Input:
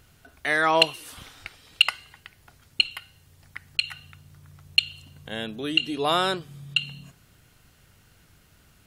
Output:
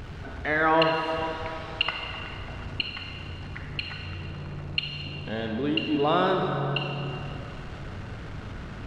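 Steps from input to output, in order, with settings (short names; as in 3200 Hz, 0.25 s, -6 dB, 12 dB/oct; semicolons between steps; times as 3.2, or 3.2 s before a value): zero-crossing step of -32.5 dBFS; upward compressor, threshold -43 dBFS; tape spacing loss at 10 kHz 34 dB; reverb RT60 3.3 s, pre-delay 28 ms, DRR 2.5 dB; gain +1.5 dB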